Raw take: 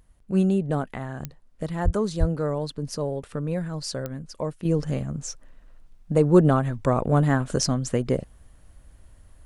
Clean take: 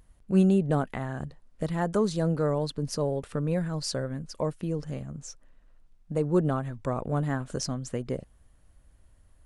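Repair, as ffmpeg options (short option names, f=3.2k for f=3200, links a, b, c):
-filter_complex "[0:a]adeclick=t=4,asplit=3[a][b][c];[a]afade=t=out:st=1.84:d=0.02[d];[b]highpass=f=140:w=0.5412,highpass=f=140:w=1.3066,afade=t=in:st=1.84:d=0.02,afade=t=out:st=1.96:d=0.02[e];[c]afade=t=in:st=1.96:d=0.02[f];[d][e][f]amix=inputs=3:normalize=0,asplit=3[g][h][i];[g]afade=t=out:st=2.19:d=0.02[j];[h]highpass=f=140:w=0.5412,highpass=f=140:w=1.3066,afade=t=in:st=2.19:d=0.02,afade=t=out:st=2.31:d=0.02[k];[i]afade=t=in:st=2.31:d=0.02[l];[j][k][l]amix=inputs=3:normalize=0,asetnsamples=n=441:p=0,asendcmd='4.65 volume volume -8dB',volume=0dB"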